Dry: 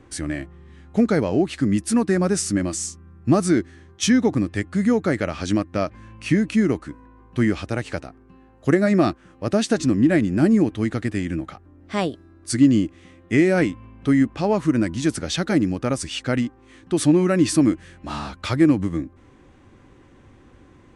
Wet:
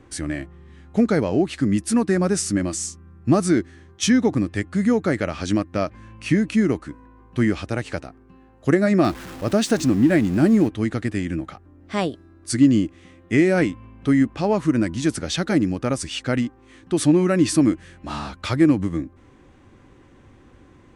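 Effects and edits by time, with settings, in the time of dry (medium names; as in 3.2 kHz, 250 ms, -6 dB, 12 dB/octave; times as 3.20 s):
9.04–10.68 s: jump at every zero crossing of -32.5 dBFS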